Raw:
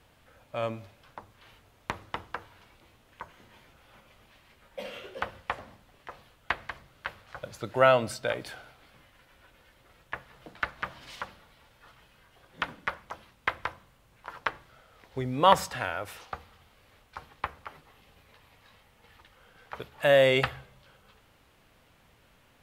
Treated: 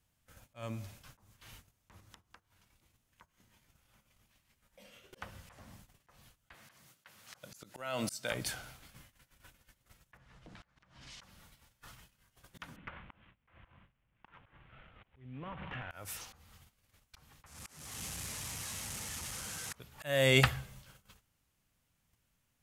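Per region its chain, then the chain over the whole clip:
0:02.00–0:05.13: hum removal 362.5 Hz, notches 4 + downward compressor, threshold −55 dBFS
0:06.54–0:08.32: high-pass filter 180 Hz + high-shelf EQ 2,900 Hz +5 dB + downward compressor 12 to 1, threshold −22 dBFS
0:10.17–0:11.21: downward compressor 12 to 1, threshold −47 dBFS + high-frequency loss of the air 85 metres + multiband upward and downward expander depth 40%
0:12.76–0:15.91: variable-slope delta modulation 16 kbit/s + downward compressor 12 to 1, threshold −39 dBFS
0:17.46–0:19.75: linear delta modulator 64 kbit/s, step −41 dBFS + high-pass filter 61 Hz
whole clip: noise gate −57 dBFS, range −20 dB; drawn EQ curve 180 Hz 0 dB, 450 Hz −10 dB, 4,000 Hz −3 dB, 6,300 Hz +6 dB; volume swells 373 ms; level +6 dB

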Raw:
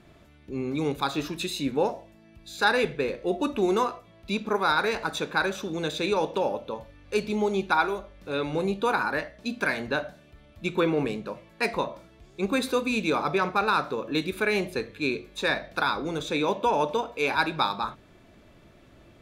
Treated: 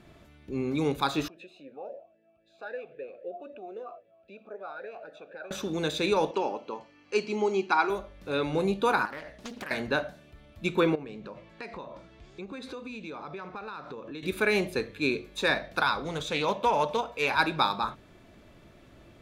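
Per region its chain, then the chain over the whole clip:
0:01.28–0:05.51: tilt shelving filter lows +5 dB, about 870 Hz + downward compressor 2 to 1, threshold −29 dBFS + formant filter swept between two vowels a-e 3.8 Hz
0:06.31–0:07.90: Butterworth band-reject 3,600 Hz, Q 5.9 + loudspeaker in its box 270–7,300 Hz, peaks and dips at 370 Hz +3 dB, 550 Hz −9 dB, 1,600 Hz −4 dB, 3,500 Hz +3 dB
0:09.05–0:09.71: high-shelf EQ 5,900 Hz +5 dB + downward compressor, threshold −36 dBFS + highs frequency-modulated by the lows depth 0.59 ms
0:10.95–0:14.23: high-frequency loss of the air 85 metres + downward compressor 5 to 1, threshold −38 dBFS + one half of a high-frequency compander encoder only
0:15.80–0:17.40: parametric band 320 Hz −8 dB 0.78 octaves + highs frequency-modulated by the lows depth 0.12 ms
whole clip: no processing

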